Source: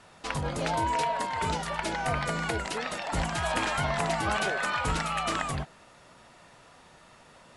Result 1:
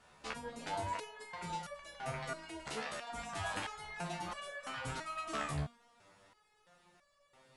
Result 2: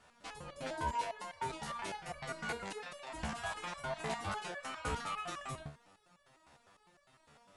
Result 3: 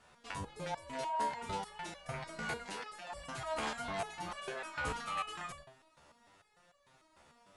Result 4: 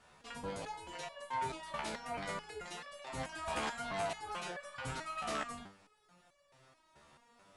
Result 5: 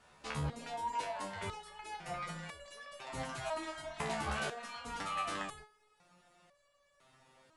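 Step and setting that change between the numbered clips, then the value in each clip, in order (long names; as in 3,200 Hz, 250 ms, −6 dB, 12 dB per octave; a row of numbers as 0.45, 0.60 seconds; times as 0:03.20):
step-sequenced resonator, speed: 3, 9.9, 6.7, 4.6, 2 Hertz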